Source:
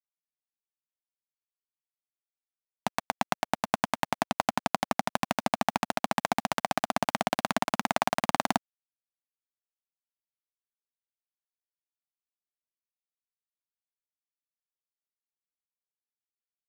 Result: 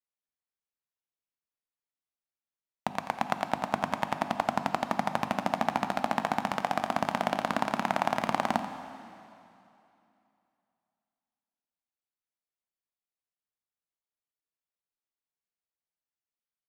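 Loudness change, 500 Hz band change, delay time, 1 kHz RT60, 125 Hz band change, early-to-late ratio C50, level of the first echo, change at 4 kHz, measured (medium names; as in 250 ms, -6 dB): -0.5 dB, +0.5 dB, 87 ms, 2.8 s, 0.0 dB, 8.0 dB, -12.5 dB, -4.5 dB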